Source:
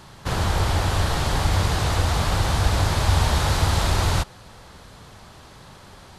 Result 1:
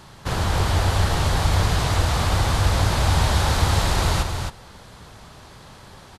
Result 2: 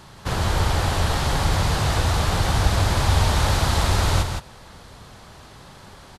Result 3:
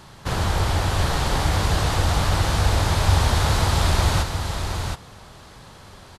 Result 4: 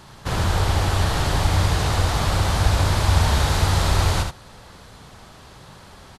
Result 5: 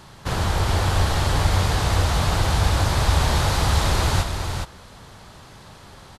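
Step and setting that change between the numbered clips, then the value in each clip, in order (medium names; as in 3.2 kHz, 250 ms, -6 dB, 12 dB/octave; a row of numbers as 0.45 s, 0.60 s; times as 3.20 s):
delay, time: 266 ms, 165 ms, 721 ms, 75 ms, 416 ms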